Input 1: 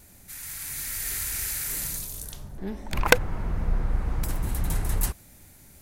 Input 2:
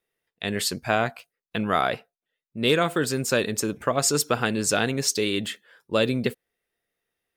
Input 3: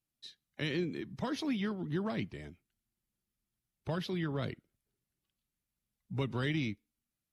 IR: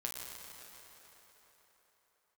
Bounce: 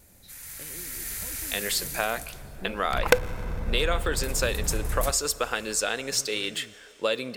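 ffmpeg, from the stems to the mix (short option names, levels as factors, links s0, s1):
-filter_complex "[0:a]volume=0.562,asplit=2[s0][s1];[s1]volume=0.224[s2];[1:a]highpass=f=1000:p=1,acompressor=threshold=0.0282:ratio=2,adelay=1100,volume=1.33,asplit=2[s3][s4];[s4]volume=0.168[s5];[2:a]acompressor=threshold=0.01:ratio=6,volume=0.473[s6];[3:a]atrim=start_sample=2205[s7];[s2][s5]amix=inputs=2:normalize=0[s8];[s8][s7]afir=irnorm=-1:irlink=0[s9];[s0][s3][s6][s9]amix=inputs=4:normalize=0,equalizer=f=510:t=o:w=0.38:g=6"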